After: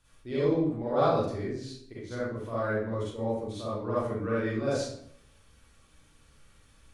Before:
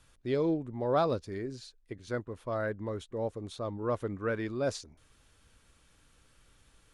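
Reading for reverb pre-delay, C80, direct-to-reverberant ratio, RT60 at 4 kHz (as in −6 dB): 38 ms, 3.0 dB, −9.5 dB, 0.50 s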